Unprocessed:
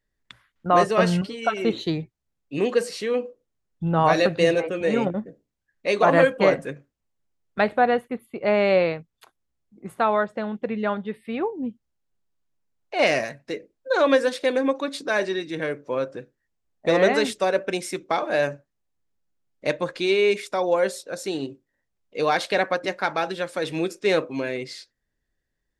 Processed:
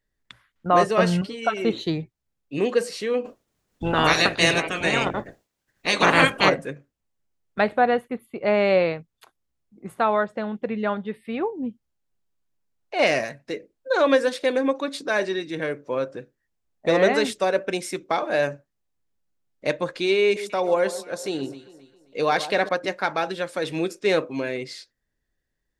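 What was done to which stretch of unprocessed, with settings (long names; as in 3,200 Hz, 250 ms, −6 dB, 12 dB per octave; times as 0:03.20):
0:03.24–0:06.48: ceiling on every frequency bin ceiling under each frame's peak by 24 dB
0:20.23–0:22.69: delay that swaps between a low-pass and a high-pass 133 ms, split 1,200 Hz, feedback 59%, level −12 dB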